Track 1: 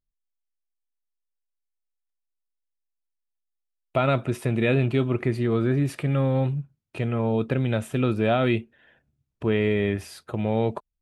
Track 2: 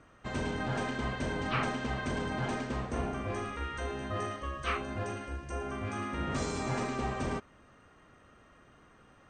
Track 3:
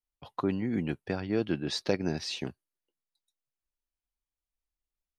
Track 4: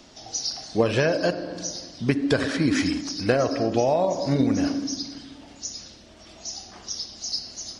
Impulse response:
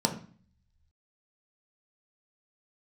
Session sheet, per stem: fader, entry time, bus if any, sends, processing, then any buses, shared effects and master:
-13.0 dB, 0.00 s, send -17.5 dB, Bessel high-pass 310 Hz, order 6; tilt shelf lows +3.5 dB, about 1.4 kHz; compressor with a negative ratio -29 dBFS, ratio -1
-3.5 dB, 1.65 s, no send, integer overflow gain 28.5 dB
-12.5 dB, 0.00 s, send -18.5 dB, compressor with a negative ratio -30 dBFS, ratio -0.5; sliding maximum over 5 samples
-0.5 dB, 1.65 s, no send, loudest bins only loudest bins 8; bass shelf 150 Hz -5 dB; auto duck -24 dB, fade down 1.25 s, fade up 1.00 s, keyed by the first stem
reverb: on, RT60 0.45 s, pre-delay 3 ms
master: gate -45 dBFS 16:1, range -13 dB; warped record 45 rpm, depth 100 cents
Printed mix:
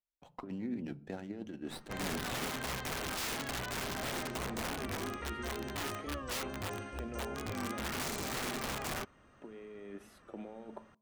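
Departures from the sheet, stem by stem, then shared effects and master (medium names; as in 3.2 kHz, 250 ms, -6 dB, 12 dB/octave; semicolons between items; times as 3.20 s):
stem 1 -13.0 dB -> -21.5 dB; stem 4: muted; master: missing gate -45 dBFS 16:1, range -13 dB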